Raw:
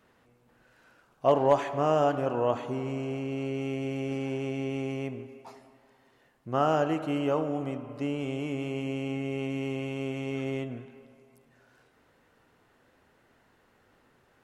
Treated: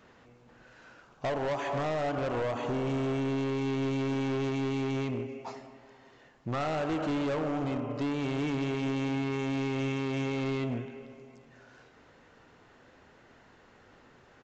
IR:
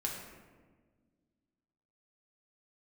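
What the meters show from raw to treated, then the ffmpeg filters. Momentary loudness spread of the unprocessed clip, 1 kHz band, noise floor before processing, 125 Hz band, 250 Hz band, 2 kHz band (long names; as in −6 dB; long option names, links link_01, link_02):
9 LU, −4.5 dB, −66 dBFS, +1.0 dB, +1.0 dB, +2.0 dB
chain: -filter_complex "[0:a]acompressor=threshold=-28dB:ratio=16,aresample=16000,asoftclip=type=hard:threshold=-34.5dB,aresample=44100,asplit=2[link_01][link_02];[link_02]adelay=577.3,volume=-28dB,highshelf=frequency=4000:gain=-13[link_03];[link_01][link_03]amix=inputs=2:normalize=0,volume=6.5dB"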